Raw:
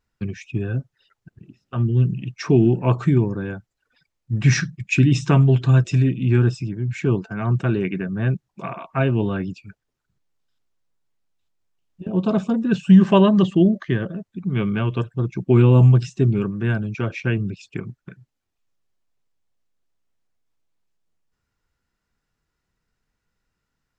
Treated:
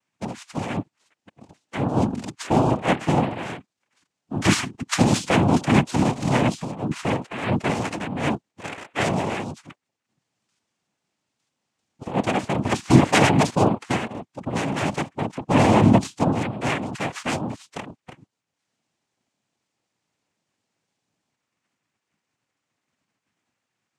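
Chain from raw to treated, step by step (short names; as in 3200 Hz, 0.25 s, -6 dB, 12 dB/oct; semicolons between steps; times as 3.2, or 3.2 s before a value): spectral limiter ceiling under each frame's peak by 15 dB; noise vocoder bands 4; gain -2.5 dB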